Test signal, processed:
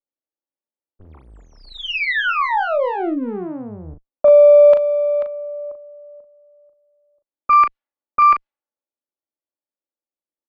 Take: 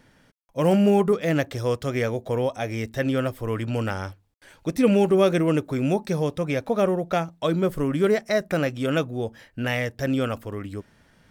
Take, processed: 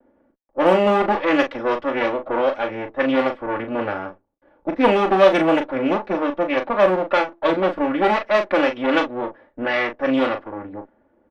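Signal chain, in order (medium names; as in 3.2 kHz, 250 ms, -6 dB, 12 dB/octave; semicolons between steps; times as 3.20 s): comb filter that takes the minimum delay 3.5 ms; three-band isolator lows -17 dB, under 290 Hz, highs -19 dB, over 4 kHz; doubling 38 ms -7 dB; level-controlled noise filter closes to 530 Hz, open at -19 dBFS; trim +7.5 dB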